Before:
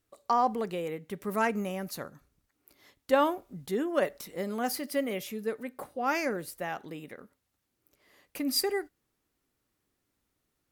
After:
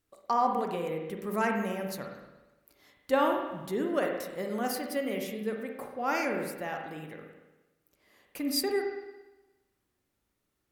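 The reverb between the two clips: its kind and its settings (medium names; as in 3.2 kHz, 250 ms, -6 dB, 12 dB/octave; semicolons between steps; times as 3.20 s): spring tank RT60 1.1 s, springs 38/52/57 ms, chirp 55 ms, DRR 2.5 dB; trim -2 dB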